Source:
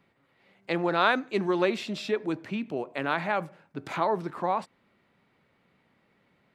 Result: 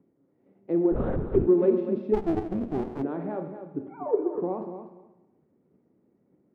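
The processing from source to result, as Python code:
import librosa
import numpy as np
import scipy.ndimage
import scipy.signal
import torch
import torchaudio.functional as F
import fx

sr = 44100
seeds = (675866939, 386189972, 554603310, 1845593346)

p1 = fx.sine_speech(x, sr, at=(3.82, 4.35))
p2 = fx.tilt_eq(p1, sr, slope=-3.5)
p3 = fx.level_steps(p2, sr, step_db=20)
p4 = p2 + (p3 * librosa.db_to_amplitude(-1.5))
p5 = 10.0 ** (-8.5 / 20.0) * np.tanh(p4 / 10.0 ** (-8.5 / 20.0))
p6 = fx.bandpass_q(p5, sr, hz=340.0, q=2.0)
p7 = fx.echo_feedback(p6, sr, ms=246, feedback_pct=15, wet_db=-10)
p8 = fx.rev_schroeder(p7, sr, rt60_s=1.0, comb_ms=26, drr_db=6.5)
p9 = fx.lpc_vocoder(p8, sr, seeds[0], excitation='whisper', order=8, at=(0.92, 1.47))
y = fx.running_max(p9, sr, window=33, at=(2.13, 3.02), fade=0.02)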